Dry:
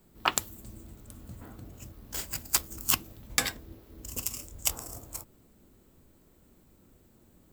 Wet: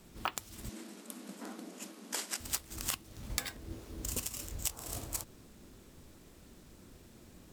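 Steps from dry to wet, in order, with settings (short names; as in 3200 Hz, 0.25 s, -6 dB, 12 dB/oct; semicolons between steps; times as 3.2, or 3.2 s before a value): compressor 12:1, threshold -37 dBFS, peak gain reduction 18.5 dB; careless resampling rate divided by 2×, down none, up hold; 0.69–2.4 brick-wall FIR band-pass 180–13000 Hz; gain +4.5 dB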